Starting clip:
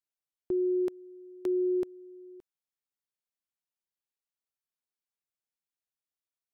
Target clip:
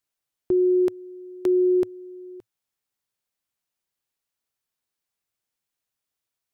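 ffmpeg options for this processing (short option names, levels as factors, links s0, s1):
-af "equalizer=f=110:w=4.5:g=6,volume=2.66"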